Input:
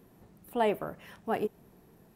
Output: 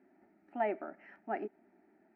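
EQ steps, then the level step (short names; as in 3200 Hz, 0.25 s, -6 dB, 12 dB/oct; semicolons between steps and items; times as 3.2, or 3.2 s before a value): speaker cabinet 320–3100 Hz, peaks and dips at 510 Hz -6 dB, 740 Hz -4 dB, 1100 Hz -3 dB, 1600 Hz -5 dB, 2800 Hz -8 dB; fixed phaser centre 710 Hz, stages 8; +1.0 dB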